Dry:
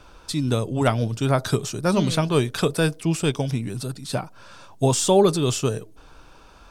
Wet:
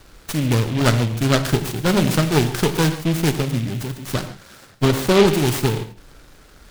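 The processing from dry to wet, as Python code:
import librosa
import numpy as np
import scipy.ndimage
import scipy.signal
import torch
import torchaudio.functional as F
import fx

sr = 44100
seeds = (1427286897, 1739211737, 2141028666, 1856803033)

y = fx.lower_of_two(x, sr, delay_ms=0.55)
y = fx.lowpass(y, sr, hz=fx.line((4.87, 2900.0), (5.27, 1700.0)), slope=6, at=(4.87, 5.27), fade=0.02)
y = fx.rev_gated(y, sr, seeds[0], gate_ms=170, shape='flat', drr_db=8.5)
y = fx.noise_mod_delay(y, sr, seeds[1], noise_hz=2500.0, depth_ms=0.091)
y = y * librosa.db_to_amplitude(3.0)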